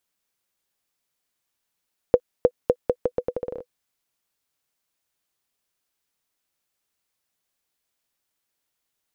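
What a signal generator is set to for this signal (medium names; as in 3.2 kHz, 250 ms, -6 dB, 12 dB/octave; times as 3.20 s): bouncing ball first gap 0.31 s, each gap 0.8, 495 Hz, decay 60 ms -2.5 dBFS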